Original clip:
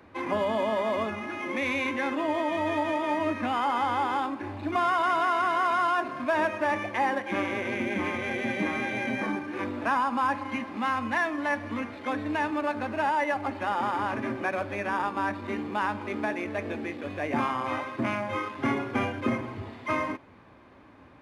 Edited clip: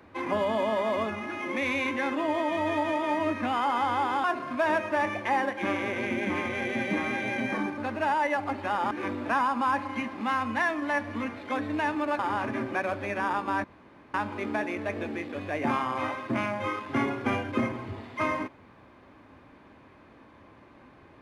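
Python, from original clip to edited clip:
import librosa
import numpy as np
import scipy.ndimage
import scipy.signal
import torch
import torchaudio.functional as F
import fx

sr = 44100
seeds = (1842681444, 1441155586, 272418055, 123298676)

y = fx.edit(x, sr, fx.cut(start_s=4.24, length_s=1.69),
    fx.move(start_s=12.75, length_s=1.13, to_s=9.47),
    fx.room_tone_fill(start_s=15.33, length_s=0.5), tone=tone)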